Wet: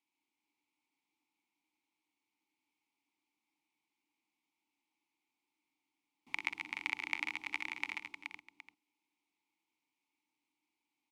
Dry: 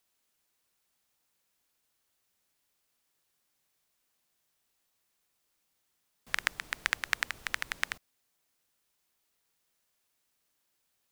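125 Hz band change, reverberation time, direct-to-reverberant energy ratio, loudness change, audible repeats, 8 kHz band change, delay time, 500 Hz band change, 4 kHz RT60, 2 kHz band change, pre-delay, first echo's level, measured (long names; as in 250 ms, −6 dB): below −10 dB, no reverb audible, no reverb audible, −5.5 dB, 6, −15.5 dB, 61 ms, −10.5 dB, no reverb audible, −5.0 dB, no reverb audible, −11.0 dB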